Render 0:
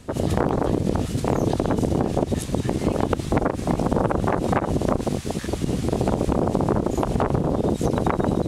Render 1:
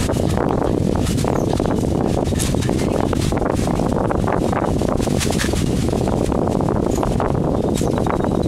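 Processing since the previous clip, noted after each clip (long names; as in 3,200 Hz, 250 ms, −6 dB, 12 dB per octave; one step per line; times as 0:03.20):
envelope flattener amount 100%
level −1 dB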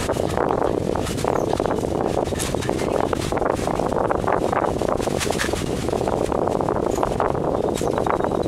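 drawn EQ curve 240 Hz 0 dB, 410 Hz +8 dB, 1,200 Hz +10 dB, 4,700 Hz +5 dB
level −8.5 dB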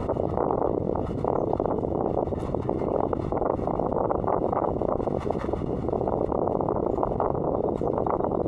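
Savitzky-Golay smoothing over 65 samples
level −4 dB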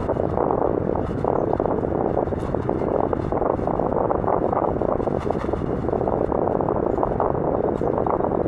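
noise in a band 330–1,500 Hz −45 dBFS
level +4 dB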